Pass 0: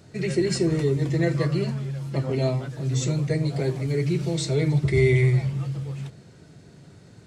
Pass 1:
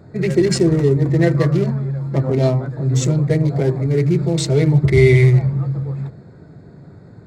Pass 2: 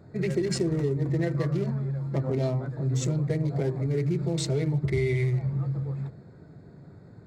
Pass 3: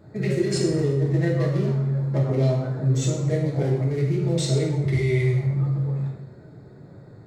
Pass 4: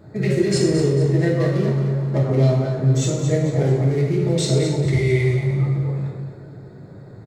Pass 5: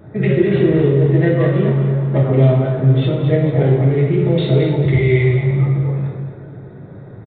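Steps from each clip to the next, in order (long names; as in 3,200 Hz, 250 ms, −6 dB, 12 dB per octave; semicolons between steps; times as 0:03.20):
adaptive Wiener filter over 15 samples; level +8 dB
downward compressor, threshold −15 dBFS, peak gain reduction 8.5 dB; level −7.5 dB
convolution reverb RT60 0.80 s, pre-delay 3 ms, DRR −2.5 dB
repeating echo 223 ms, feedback 40%, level −9 dB; level +4 dB
downsampling to 8,000 Hz; level +4.5 dB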